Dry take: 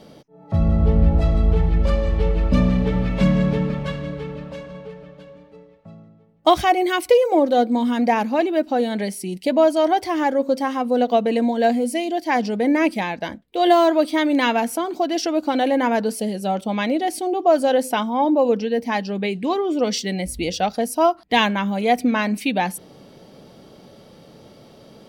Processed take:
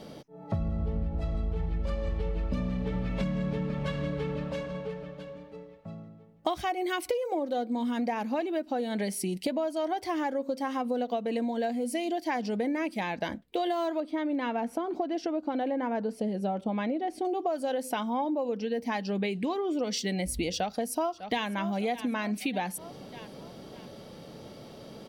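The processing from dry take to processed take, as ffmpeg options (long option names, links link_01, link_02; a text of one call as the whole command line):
ffmpeg -i in.wav -filter_complex "[0:a]asettb=1/sr,asplit=3[link_01][link_02][link_03];[link_01]atrim=end=14.004[link_04];[link_02]atrim=start=14:end=17.25,asetpts=PTS-STARTPTS,afade=type=in:duration=0.004:curve=qsin,afade=type=out:start_time=3.246:duration=0.004:curve=qsin,lowpass=frequency=1200:poles=1[link_05];[link_03]atrim=start=17.246[link_06];[link_04][link_05]acrossfade=duration=0.004:curve1=hsin:curve2=qsin[link_07];[link_07][link_06]acrossfade=duration=0.004:curve1=qsin:curve2=hsin,asplit=2[link_08][link_09];[link_09]afade=type=in:start_time=20.52:duration=0.01,afade=type=out:start_time=21.47:duration=0.01,aecho=0:1:600|1200|1800|2400:0.177828|0.0711312|0.0284525|0.011381[link_10];[link_08][link_10]amix=inputs=2:normalize=0,acompressor=threshold=-27dB:ratio=12" out.wav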